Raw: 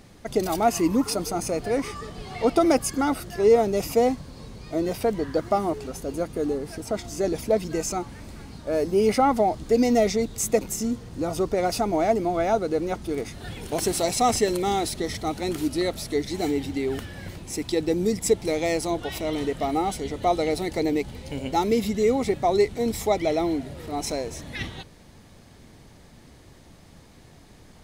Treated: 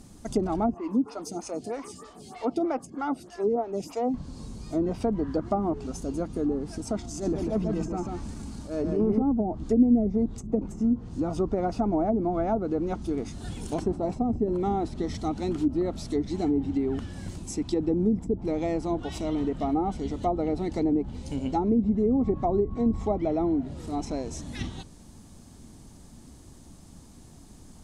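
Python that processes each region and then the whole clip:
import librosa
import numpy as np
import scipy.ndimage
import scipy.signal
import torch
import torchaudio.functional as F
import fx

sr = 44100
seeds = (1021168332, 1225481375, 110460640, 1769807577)

y = fx.chain(x, sr, fx.highpass(hz=320.0, slope=6),
    fx.stagger_phaser(hz=3.2), at=(0.74, 4.14))
y = fx.chain(y, sr, fx.transient(attack_db=-11, sustain_db=3),
    fx.overload_stage(gain_db=17.5),
    fx.echo_single(ms=144, db=-4.0), at=(7.03, 9.22))
y = fx.lowpass(y, sr, hz=9800.0, slope=12, at=(22.11, 23.16), fade=0.02)
y = fx.low_shelf(y, sr, hz=80.0, db=5.5, at=(22.11, 23.16), fade=0.02)
y = fx.dmg_tone(y, sr, hz=1100.0, level_db=-44.0, at=(22.11, 23.16), fade=0.02)
y = fx.graphic_eq(y, sr, hz=(125, 250, 500, 2000, 4000, 8000), db=(-4, 4, -7, -10, -4, 7))
y = fx.env_lowpass_down(y, sr, base_hz=390.0, full_db=-19.0)
y = fx.low_shelf(y, sr, hz=210.0, db=3.5)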